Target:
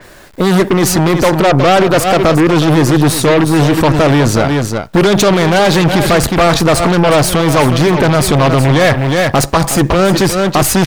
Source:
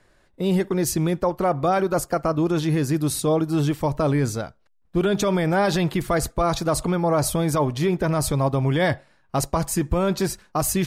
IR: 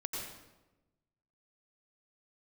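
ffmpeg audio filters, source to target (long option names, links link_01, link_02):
-af "acrusher=bits=10:mix=0:aa=0.000001,aeval=exprs='0.266*(cos(1*acos(clip(val(0)/0.266,-1,1)))-cos(1*PI/2))+0.075*(cos(5*acos(clip(val(0)/0.266,-1,1)))-cos(5*PI/2))+0.0376*(cos(6*acos(clip(val(0)/0.266,-1,1)))-cos(6*PI/2))+0.0266*(cos(7*acos(clip(val(0)/0.266,-1,1)))-cos(7*PI/2))+0.0668*(cos(8*acos(clip(val(0)/0.266,-1,1)))-cos(8*PI/2))':channel_layout=same,lowshelf=frequency=84:gain=-7.5,aecho=1:1:365:0.266,alimiter=level_in=19.5dB:limit=-1dB:release=50:level=0:latency=1,adynamicequalizer=threshold=0.0398:dfrequency=5200:dqfactor=0.7:tfrequency=5200:tqfactor=0.7:attack=5:release=100:ratio=0.375:range=3:mode=cutabove:tftype=highshelf,volume=-1dB"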